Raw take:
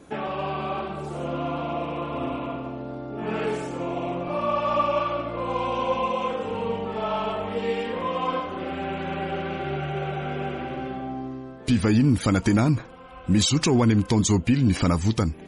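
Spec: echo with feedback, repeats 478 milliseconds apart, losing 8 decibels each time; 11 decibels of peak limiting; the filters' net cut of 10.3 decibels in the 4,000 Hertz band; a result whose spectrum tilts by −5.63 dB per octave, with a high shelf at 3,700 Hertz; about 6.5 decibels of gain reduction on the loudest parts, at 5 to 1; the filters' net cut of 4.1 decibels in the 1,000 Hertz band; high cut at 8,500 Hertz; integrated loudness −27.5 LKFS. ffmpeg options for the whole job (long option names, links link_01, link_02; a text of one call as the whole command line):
ffmpeg -i in.wav -af "lowpass=8500,equalizer=frequency=1000:width_type=o:gain=-4,highshelf=frequency=3700:gain=-8,equalizer=frequency=4000:width_type=o:gain=-8,acompressor=threshold=-23dB:ratio=5,alimiter=level_in=2dB:limit=-24dB:level=0:latency=1,volume=-2dB,aecho=1:1:478|956|1434|1912|2390:0.398|0.159|0.0637|0.0255|0.0102,volume=6dB" out.wav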